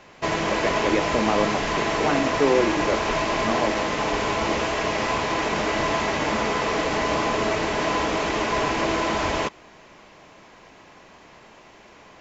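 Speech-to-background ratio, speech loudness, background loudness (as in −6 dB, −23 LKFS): −2.5 dB, −26.0 LKFS, −23.5 LKFS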